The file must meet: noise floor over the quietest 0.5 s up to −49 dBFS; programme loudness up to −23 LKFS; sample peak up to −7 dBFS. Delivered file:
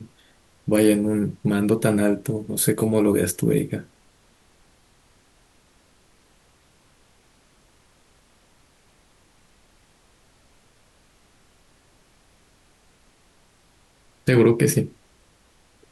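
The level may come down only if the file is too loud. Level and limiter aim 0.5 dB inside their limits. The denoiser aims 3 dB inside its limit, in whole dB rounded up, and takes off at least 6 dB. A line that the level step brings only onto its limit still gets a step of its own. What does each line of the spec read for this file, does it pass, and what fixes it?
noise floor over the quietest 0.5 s −59 dBFS: in spec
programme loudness −21.5 LKFS: out of spec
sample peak −6.0 dBFS: out of spec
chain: level −2 dB

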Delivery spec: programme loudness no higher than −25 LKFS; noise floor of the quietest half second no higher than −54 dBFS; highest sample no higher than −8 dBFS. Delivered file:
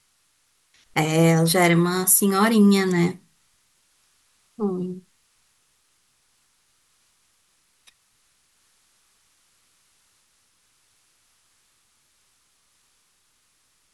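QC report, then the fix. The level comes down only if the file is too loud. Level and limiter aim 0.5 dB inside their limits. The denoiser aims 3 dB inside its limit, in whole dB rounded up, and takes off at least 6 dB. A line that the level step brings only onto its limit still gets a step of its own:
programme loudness −19.5 LKFS: out of spec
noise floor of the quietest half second −66 dBFS: in spec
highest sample −5.0 dBFS: out of spec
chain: level −6 dB

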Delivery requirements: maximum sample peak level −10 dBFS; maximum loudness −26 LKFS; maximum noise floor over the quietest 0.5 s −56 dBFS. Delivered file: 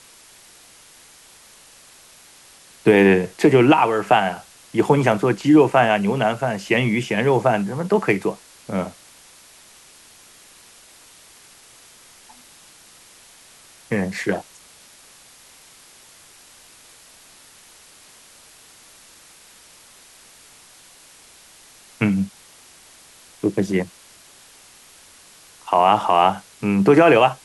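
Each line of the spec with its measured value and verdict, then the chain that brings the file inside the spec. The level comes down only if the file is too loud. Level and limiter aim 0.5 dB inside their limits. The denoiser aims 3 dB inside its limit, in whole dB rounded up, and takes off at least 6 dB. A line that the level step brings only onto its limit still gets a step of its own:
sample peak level −3.5 dBFS: out of spec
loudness −18.5 LKFS: out of spec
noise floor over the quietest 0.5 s −48 dBFS: out of spec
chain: broadband denoise 6 dB, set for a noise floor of −48 dBFS
level −8 dB

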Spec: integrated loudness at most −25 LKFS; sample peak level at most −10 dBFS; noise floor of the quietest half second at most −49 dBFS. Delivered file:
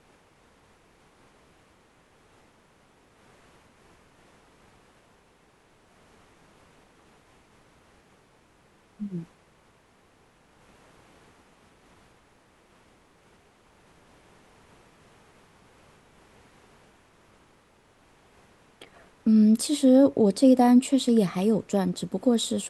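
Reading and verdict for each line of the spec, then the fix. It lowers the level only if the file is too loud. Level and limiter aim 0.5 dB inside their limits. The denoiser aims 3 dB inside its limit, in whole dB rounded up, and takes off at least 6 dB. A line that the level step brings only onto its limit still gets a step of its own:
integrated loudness −22.0 LKFS: out of spec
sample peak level −8.5 dBFS: out of spec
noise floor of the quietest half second −61 dBFS: in spec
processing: level −3.5 dB

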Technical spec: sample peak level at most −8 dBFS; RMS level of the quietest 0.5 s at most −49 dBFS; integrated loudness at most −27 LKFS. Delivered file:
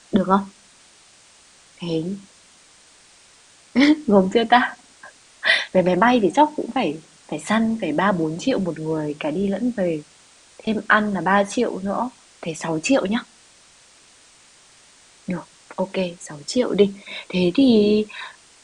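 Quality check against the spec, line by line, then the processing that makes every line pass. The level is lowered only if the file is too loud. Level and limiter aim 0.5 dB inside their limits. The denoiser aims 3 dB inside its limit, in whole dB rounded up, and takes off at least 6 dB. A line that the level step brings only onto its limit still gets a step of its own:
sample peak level −2.0 dBFS: out of spec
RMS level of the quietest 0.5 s −52 dBFS: in spec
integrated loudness −20.5 LKFS: out of spec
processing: level −7 dB

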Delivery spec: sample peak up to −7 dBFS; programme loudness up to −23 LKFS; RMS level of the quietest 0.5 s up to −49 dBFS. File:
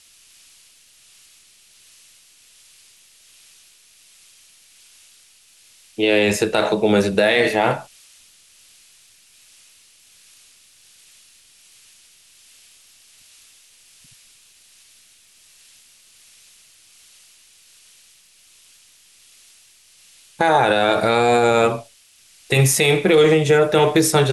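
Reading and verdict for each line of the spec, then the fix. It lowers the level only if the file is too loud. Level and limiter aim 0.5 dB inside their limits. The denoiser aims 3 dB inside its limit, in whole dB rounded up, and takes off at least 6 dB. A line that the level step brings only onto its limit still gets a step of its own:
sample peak −6.0 dBFS: out of spec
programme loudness −16.5 LKFS: out of spec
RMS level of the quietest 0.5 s −53 dBFS: in spec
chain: level −7 dB

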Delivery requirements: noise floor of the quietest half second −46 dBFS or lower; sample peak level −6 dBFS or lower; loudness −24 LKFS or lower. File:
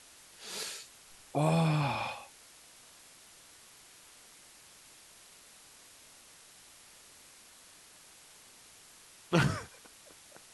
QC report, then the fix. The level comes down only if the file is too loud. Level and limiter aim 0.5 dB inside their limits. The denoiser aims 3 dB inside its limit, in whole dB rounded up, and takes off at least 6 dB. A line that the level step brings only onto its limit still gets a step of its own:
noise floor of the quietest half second −57 dBFS: in spec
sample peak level −11.0 dBFS: in spec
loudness −32.5 LKFS: in spec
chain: no processing needed

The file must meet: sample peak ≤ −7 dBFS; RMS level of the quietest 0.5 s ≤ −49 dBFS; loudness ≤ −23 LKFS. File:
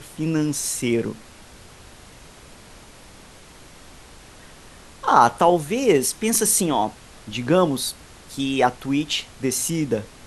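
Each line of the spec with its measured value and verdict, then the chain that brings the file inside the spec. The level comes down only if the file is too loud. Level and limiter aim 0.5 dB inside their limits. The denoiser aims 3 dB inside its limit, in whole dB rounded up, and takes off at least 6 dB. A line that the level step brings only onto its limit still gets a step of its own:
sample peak −1.5 dBFS: out of spec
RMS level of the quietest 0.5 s −45 dBFS: out of spec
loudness −21.0 LKFS: out of spec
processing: broadband denoise 6 dB, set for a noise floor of −45 dBFS
level −2.5 dB
brickwall limiter −7.5 dBFS

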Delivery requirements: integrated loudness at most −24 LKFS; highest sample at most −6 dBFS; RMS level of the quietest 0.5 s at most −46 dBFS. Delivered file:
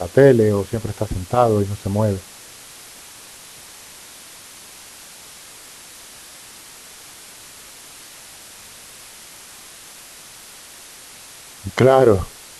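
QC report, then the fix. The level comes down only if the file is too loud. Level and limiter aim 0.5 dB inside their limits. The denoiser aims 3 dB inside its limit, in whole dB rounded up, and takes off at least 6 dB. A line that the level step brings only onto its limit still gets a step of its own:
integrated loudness −17.5 LKFS: out of spec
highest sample −1.5 dBFS: out of spec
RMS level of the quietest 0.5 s −41 dBFS: out of spec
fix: level −7 dB

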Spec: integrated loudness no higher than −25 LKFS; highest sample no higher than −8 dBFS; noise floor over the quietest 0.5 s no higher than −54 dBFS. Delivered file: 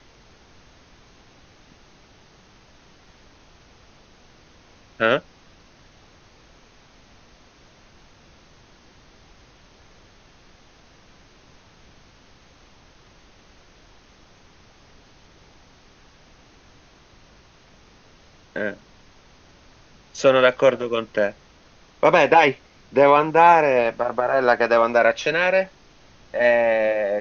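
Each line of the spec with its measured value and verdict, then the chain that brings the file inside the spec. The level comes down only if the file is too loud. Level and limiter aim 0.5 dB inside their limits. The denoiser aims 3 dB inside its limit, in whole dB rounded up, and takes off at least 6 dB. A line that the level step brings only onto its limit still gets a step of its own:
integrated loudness −18.5 LKFS: out of spec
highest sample −2.5 dBFS: out of spec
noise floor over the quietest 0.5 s −52 dBFS: out of spec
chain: level −7 dB

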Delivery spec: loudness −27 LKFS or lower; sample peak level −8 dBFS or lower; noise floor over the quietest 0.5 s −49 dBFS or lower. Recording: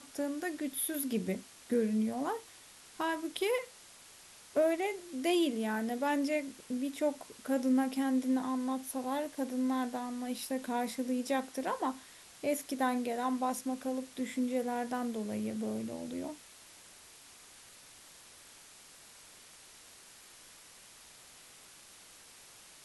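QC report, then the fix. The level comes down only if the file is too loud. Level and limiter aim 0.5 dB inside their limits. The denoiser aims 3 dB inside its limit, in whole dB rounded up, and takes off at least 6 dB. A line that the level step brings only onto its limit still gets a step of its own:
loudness −34.5 LKFS: in spec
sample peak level −18.5 dBFS: in spec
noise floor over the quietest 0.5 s −56 dBFS: in spec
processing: no processing needed

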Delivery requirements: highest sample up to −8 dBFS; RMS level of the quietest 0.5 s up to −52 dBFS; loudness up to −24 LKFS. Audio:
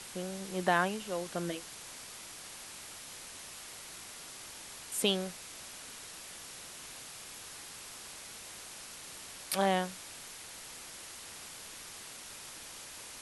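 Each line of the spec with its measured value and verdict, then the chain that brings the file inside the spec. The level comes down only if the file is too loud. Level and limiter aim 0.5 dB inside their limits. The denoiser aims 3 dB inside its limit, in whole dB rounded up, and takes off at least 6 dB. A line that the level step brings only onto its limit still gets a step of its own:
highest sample −13.5 dBFS: in spec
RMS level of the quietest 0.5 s −48 dBFS: out of spec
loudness −38.5 LKFS: in spec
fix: broadband denoise 7 dB, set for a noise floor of −48 dBFS

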